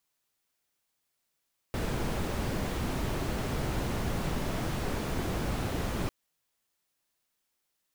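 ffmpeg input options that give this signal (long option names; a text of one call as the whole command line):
ffmpeg -f lavfi -i "anoisesrc=color=brown:amplitude=0.132:duration=4.35:sample_rate=44100:seed=1" out.wav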